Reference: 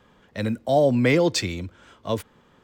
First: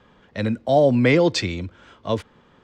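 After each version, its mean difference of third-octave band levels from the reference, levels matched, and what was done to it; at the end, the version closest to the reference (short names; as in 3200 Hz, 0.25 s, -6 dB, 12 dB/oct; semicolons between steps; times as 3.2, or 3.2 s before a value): 1.5 dB: LPF 5500 Hz 12 dB/oct; gain +2.5 dB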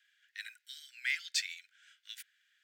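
19.0 dB: steep high-pass 1500 Hz 96 dB/oct; gain -7 dB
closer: first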